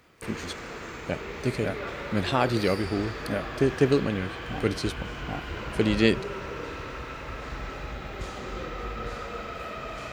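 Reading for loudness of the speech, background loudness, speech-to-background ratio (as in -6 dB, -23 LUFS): -28.0 LUFS, -36.0 LUFS, 8.0 dB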